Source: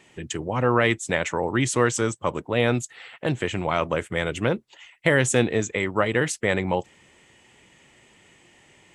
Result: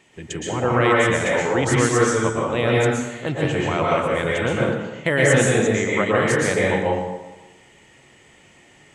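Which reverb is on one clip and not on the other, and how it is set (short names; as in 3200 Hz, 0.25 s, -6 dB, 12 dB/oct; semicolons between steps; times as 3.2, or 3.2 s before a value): plate-style reverb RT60 1.1 s, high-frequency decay 0.65×, pre-delay 0.105 s, DRR -4.5 dB; gain -1.5 dB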